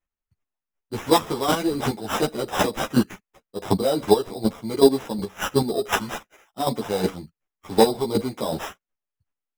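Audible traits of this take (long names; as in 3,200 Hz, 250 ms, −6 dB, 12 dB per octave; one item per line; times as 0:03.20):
chopped level 2.7 Hz, depth 65%, duty 15%
aliases and images of a low sample rate 4,400 Hz, jitter 0%
a shimmering, thickened sound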